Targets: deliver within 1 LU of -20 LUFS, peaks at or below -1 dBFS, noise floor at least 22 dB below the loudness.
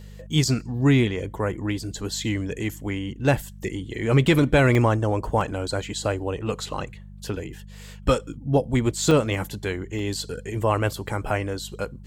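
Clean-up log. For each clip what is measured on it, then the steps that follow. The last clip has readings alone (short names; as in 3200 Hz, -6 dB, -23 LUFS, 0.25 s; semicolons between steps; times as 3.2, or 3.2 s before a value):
dropouts 4; longest dropout 1.9 ms; hum 50 Hz; harmonics up to 200 Hz; hum level -41 dBFS; loudness -24.5 LUFS; peak -8.5 dBFS; loudness target -20.0 LUFS
-> interpolate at 4.75/5.41/9.11/9.99, 1.9 ms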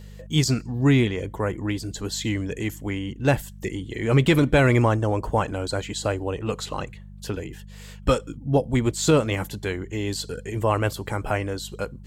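dropouts 0; hum 50 Hz; harmonics up to 200 Hz; hum level -41 dBFS
-> de-hum 50 Hz, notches 4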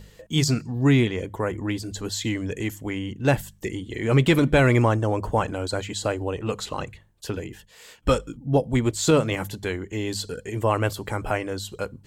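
hum none; loudness -24.5 LUFS; peak -8.0 dBFS; loudness target -20.0 LUFS
-> gain +4.5 dB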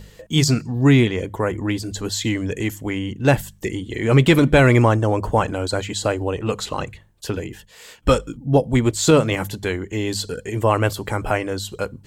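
loudness -20.0 LUFS; peak -3.5 dBFS; noise floor -49 dBFS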